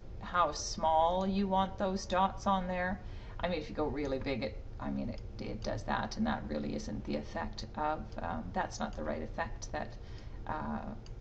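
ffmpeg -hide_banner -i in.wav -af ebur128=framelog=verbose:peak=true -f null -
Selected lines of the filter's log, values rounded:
Integrated loudness:
  I:         -35.6 LUFS
  Threshold: -45.7 LUFS
Loudness range:
  LRA:         6.5 LU
  Threshold: -56.3 LUFS
  LRA low:   -39.1 LUFS
  LRA high:  -32.6 LUFS
True peak:
  Peak:      -15.7 dBFS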